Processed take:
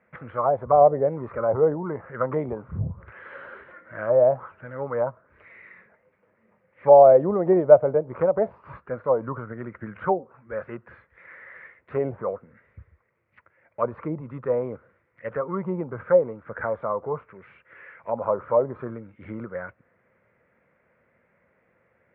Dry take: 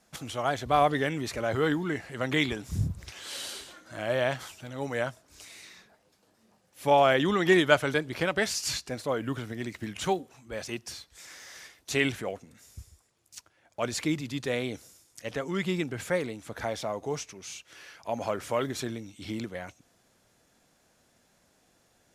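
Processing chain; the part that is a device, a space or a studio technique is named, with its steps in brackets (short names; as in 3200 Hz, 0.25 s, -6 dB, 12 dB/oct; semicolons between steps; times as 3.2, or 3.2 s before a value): envelope filter bass rig (envelope low-pass 700–2100 Hz down, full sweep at -23 dBFS; speaker cabinet 71–2000 Hz, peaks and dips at 290 Hz -8 dB, 520 Hz +7 dB, 750 Hz -8 dB, 1700 Hz -6 dB); gain +1.5 dB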